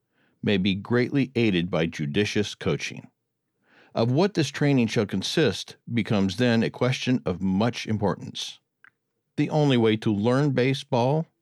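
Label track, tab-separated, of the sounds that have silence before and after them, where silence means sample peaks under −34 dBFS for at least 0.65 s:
3.960000	8.510000	sound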